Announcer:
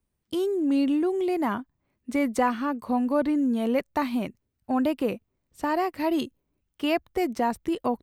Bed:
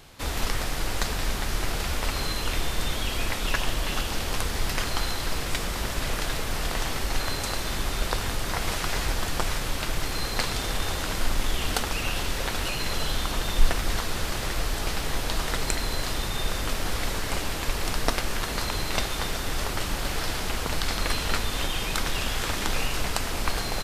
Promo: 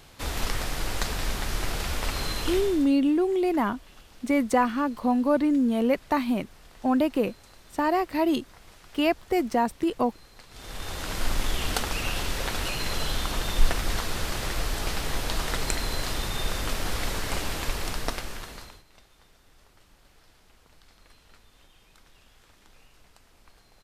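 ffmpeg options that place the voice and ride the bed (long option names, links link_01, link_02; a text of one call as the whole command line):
ffmpeg -i stem1.wav -i stem2.wav -filter_complex "[0:a]adelay=2150,volume=1.5dB[link_01];[1:a]volume=21dB,afade=type=out:start_time=2.45:duration=0.46:silence=0.0794328,afade=type=in:start_time=10.49:duration=0.81:silence=0.0749894,afade=type=out:start_time=17.59:duration=1.24:silence=0.0354813[link_02];[link_01][link_02]amix=inputs=2:normalize=0" out.wav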